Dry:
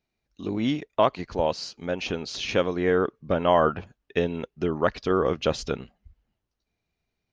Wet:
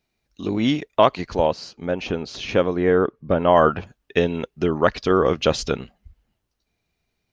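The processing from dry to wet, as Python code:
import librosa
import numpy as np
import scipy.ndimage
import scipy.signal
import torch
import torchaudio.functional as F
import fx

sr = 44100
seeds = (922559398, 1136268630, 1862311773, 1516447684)

y = fx.high_shelf(x, sr, hz=2300.0, db=fx.steps((0.0, 3.0), (1.46, -8.5), (3.55, 2.5)))
y = y * 10.0 ** (5.0 / 20.0)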